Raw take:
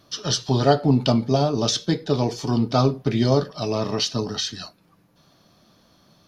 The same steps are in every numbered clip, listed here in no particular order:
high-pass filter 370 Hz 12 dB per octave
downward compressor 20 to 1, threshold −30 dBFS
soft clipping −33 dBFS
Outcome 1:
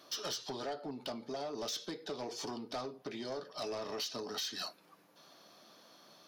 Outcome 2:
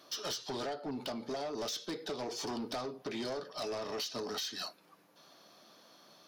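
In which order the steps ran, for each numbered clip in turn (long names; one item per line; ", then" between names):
downward compressor, then high-pass filter, then soft clipping
high-pass filter, then downward compressor, then soft clipping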